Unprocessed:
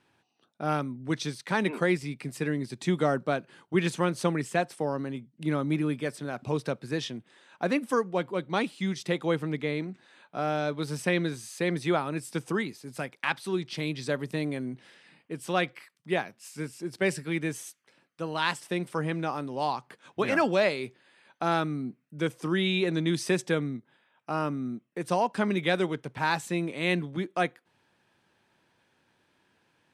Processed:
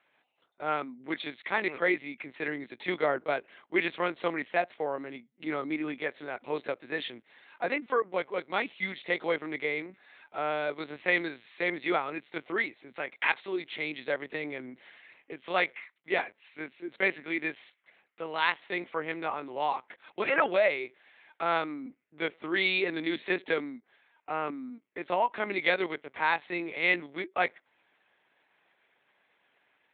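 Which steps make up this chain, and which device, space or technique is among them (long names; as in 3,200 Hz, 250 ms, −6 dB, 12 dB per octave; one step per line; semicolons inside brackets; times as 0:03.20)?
talking toy (linear-prediction vocoder at 8 kHz pitch kept; high-pass filter 370 Hz 12 dB per octave; parametric band 2,100 Hz +8 dB 0.34 octaves)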